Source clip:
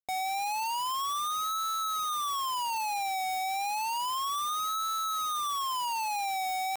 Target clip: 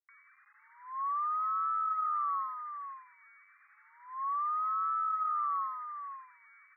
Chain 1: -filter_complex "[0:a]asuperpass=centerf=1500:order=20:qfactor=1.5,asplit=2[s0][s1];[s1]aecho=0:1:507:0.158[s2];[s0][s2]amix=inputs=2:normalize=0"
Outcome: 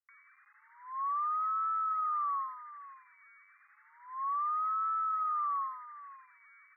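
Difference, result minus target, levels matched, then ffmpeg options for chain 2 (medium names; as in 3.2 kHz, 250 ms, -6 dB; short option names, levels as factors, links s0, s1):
echo-to-direct -7 dB
-filter_complex "[0:a]asuperpass=centerf=1500:order=20:qfactor=1.5,asplit=2[s0][s1];[s1]aecho=0:1:507:0.355[s2];[s0][s2]amix=inputs=2:normalize=0"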